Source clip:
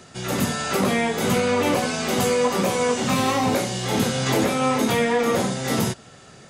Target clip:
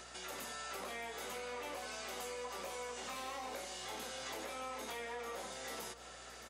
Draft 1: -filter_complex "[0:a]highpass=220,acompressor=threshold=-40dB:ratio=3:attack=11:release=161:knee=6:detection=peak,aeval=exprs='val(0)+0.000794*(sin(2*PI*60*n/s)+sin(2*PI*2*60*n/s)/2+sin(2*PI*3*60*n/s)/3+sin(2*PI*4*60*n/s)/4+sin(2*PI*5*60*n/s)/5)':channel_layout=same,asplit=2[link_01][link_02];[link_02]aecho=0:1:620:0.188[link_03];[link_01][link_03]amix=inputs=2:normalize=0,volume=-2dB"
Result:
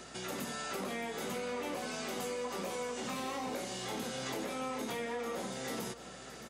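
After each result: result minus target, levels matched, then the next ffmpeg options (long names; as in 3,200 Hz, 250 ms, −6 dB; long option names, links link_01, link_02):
250 Hz band +8.5 dB; downward compressor: peak gain reduction −3.5 dB
-filter_complex "[0:a]highpass=540,acompressor=threshold=-40dB:ratio=3:attack=11:release=161:knee=6:detection=peak,aeval=exprs='val(0)+0.000794*(sin(2*PI*60*n/s)+sin(2*PI*2*60*n/s)/2+sin(2*PI*3*60*n/s)/3+sin(2*PI*4*60*n/s)/4+sin(2*PI*5*60*n/s)/5)':channel_layout=same,asplit=2[link_01][link_02];[link_02]aecho=0:1:620:0.188[link_03];[link_01][link_03]amix=inputs=2:normalize=0,volume=-2dB"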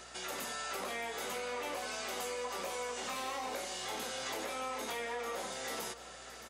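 downward compressor: peak gain reduction −5 dB
-filter_complex "[0:a]highpass=540,acompressor=threshold=-47.5dB:ratio=3:attack=11:release=161:knee=6:detection=peak,aeval=exprs='val(0)+0.000794*(sin(2*PI*60*n/s)+sin(2*PI*2*60*n/s)/2+sin(2*PI*3*60*n/s)/3+sin(2*PI*4*60*n/s)/4+sin(2*PI*5*60*n/s)/5)':channel_layout=same,asplit=2[link_01][link_02];[link_02]aecho=0:1:620:0.188[link_03];[link_01][link_03]amix=inputs=2:normalize=0,volume=-2dB"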